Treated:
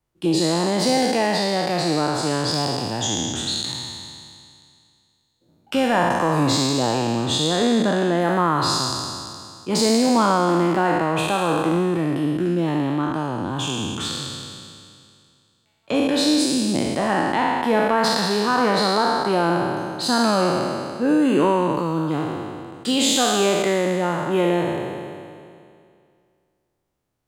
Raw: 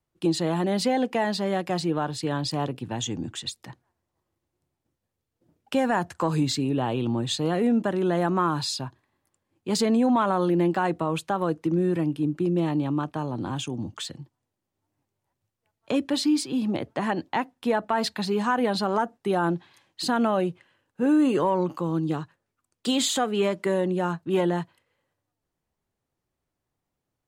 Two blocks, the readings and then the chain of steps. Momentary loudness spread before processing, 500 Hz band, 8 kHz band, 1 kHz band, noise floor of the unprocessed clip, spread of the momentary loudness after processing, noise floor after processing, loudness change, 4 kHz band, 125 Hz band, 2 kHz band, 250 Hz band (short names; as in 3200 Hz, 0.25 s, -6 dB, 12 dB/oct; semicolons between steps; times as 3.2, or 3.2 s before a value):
8 LU, +5.5 dB, +9.0 dB, +6.5 dB, -84 dBFS, 9 LU, -67 dBFS, +5.0 dB, +9.0 dB, +3.5 dB, +8.0 dB, +4.0 dB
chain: spectral trails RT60 2.29 s; gain +1.5 dB